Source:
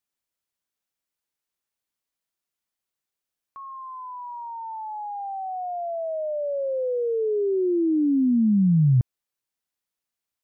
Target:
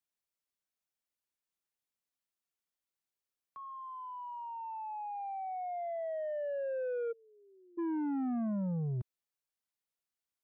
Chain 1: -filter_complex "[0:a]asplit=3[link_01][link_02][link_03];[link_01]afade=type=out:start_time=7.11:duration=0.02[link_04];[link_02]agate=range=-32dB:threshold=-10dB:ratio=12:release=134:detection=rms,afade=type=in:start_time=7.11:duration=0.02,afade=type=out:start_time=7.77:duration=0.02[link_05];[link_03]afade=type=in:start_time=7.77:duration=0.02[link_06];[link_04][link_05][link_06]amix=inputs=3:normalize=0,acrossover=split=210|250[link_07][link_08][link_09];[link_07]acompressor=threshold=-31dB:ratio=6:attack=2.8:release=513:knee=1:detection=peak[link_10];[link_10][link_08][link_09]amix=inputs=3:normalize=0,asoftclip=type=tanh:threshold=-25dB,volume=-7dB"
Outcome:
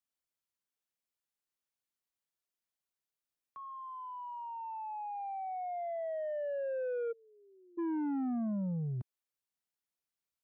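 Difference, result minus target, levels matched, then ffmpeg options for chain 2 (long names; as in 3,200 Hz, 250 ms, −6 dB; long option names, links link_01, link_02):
downward compressor: peak gain reduction +5.5 dB
-filter_complex "[0:a]asplit=3[link_01][link_02][link_03];[link_01]afade=type=out:start_time=7.11:duration=0.02[link_04];[link_02]agate=range=-32dB:threshold=-10dB:ratio=12:release=134:detection=rms,afade=type=in:start_time=7.11:duration=0.02,afade=type=out:start_time=7.77:duration=0.02[link_05];[link_03]afade=type=in:start_time=7.77:duration=0.02[link_06];[link_04][link_05][link_06]amix=inputs=3:normalize=0,acrossover=split=210|250[link_07][link_08][link_09];[link_07]acompressor=threshold=-24.5dB:ratio=6:attack=2.8:release=513:knee=1:detection=peak[link_10];[link_10][link_08][link_09]amix=inputs=3:normalize=0,asoftclip=type=tanh:threshold=-25dB,volume=-7dB"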